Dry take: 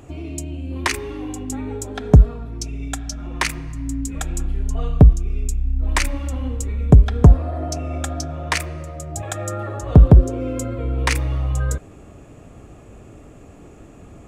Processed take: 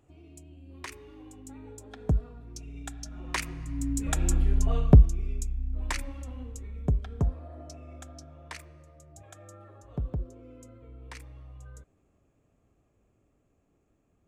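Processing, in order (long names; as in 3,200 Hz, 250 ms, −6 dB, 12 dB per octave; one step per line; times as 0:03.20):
source passing by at 0:04.39, 7 m/s, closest 2.6 metres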